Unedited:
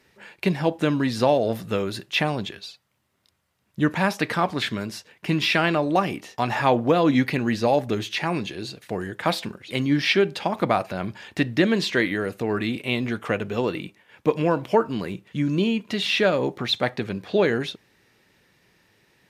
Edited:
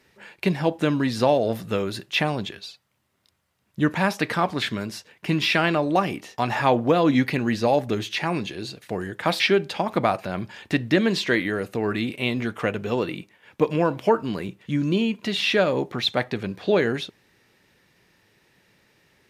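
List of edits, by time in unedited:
0:09.40–0:10.06: remove

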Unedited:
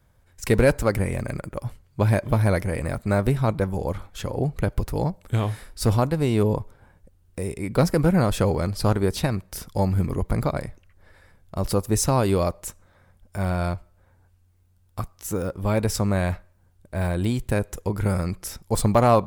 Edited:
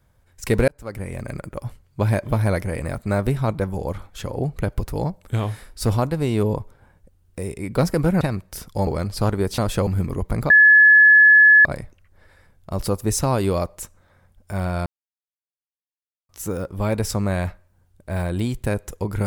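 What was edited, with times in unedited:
0:00.68–0:01.42: fade in
0:08.21–0:08.50: swap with 0:09.21–0:09.87
0:10.50: insert tone 1,710 Hz −7.5 dBFS 1.15 s
0:13.71–0:15.14: silence

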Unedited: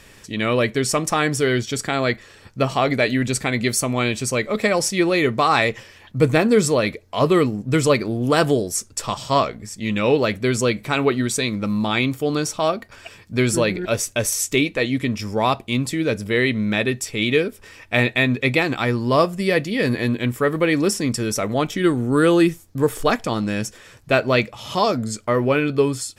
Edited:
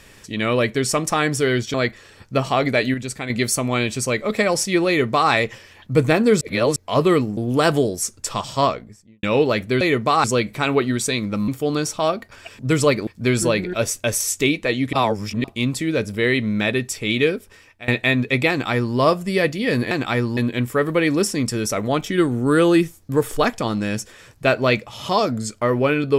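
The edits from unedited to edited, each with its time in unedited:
0:01.74–0:01.99: remove
0:03.19–0:03.55: clip gain −6.5 dB
0:05.13–0:05.56: duplicate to 0:10.54
0:06.66–0:07.01: reverse
0:07.62–0:08.10: move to 0:13.19
0:09.30–0:09.96: fade out and dull
0:11.78–0:12.08: remove
0:15.05–0:15.56: reverse
0:17.44–0:18.00: fade out, to −22.5 dB
0:18.62–0:19.08: duplicate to 0:20.03

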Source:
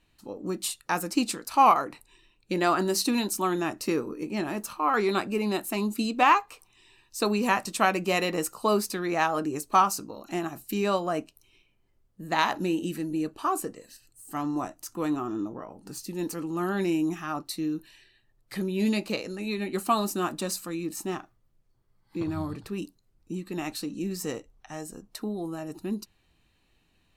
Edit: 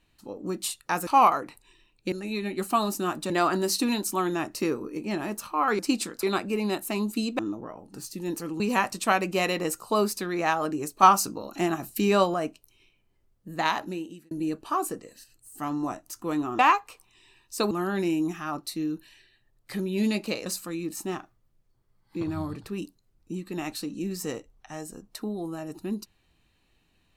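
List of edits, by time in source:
0:01.07–0:01.51: move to 0:05.05
0:06.21–0:07.33: swap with 0:15.32–0:16.53
0:09.76–0:11.07: clip gain +4.5 dB
0:12.31–0:13.04: fade out
0:19.28–0:20.46: move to 0:02.56

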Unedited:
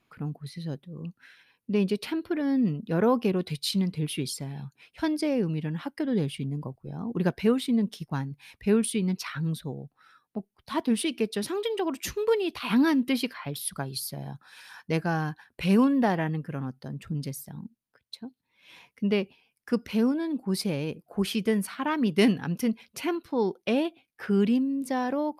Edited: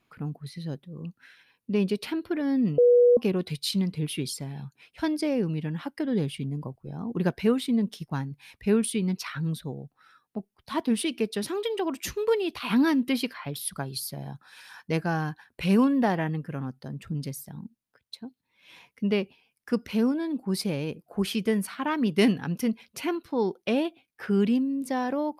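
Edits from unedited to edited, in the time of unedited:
0:02.78–0:03.17: beep over 486 Hz −14 dBFS

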